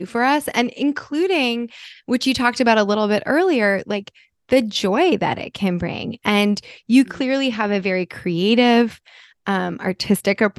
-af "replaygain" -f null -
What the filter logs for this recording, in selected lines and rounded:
track_gain = -1.2 dB
track_peak = 0.541